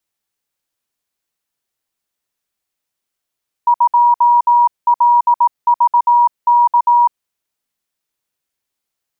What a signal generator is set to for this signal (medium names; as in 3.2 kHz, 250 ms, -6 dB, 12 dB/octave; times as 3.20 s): Morse "2LVK" 18 wpm 958 Hz -7 dBFS